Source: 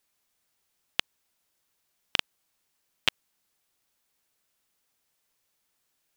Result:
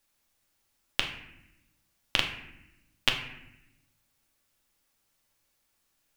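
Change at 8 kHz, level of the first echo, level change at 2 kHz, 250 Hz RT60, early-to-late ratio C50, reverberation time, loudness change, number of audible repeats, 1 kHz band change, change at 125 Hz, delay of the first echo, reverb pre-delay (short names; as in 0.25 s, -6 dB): +1.0 dB, none, +2.0 dB, 1.4 s, 7.5 dB, 0.85 s, +0.5 dB, none, +2.5 dB, +7.0 dB, none, 3 ms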